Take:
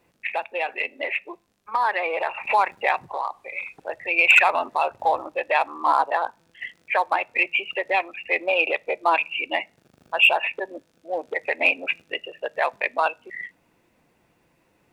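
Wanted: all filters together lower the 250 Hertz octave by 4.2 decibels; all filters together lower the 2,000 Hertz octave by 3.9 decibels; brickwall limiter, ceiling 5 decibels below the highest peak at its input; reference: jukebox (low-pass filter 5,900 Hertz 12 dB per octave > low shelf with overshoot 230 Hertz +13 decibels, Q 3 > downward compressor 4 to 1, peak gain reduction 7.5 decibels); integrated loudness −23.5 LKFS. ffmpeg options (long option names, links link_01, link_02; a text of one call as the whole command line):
ffmpeg -i in.wav -af "equalizer=frequency=250:width_type=o:gain=-4.5,equalizer=frequency=2000:width_type=o:gain=-5,alimiter=limit=-13dB:level=0:latency=1,lowpass=5900,lowshelf=frequency=230:width_type=q:width=3:gain=13,acompressor=threshold=-26dB:ratio=4,volume=8dB" out.wav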